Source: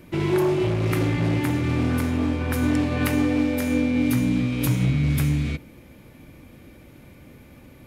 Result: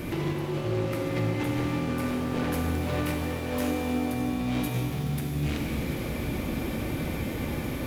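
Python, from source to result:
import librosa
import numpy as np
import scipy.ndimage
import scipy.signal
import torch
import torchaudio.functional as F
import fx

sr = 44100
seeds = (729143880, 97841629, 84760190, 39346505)

y = fx.over_compress(x, sr, threshold_db=-29.0, ratio=-0.5)
y = np.clip(y, -10.0 ** (-30.5 / 20.0), 10.0 ** (-30.5 / 20.0))
y = fx.rev_shimmer(y, sr, seeds[0], rt60_s=3.4, semitones=7, shimmer_db=-8, drr_db=0.0)
y = y * 10.0 ** (3.0 / 20.0)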